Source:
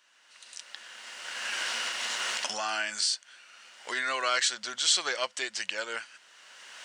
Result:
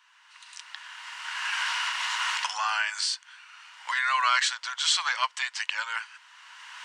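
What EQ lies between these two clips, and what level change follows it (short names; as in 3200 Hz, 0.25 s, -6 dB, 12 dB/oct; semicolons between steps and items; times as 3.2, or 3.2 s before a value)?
ladder high-pass 890 Hz, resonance 70%; bell 2200 Hz +12 dB 2.7 oct; high shelf 6000 Hz +6 dB; +1.5 dB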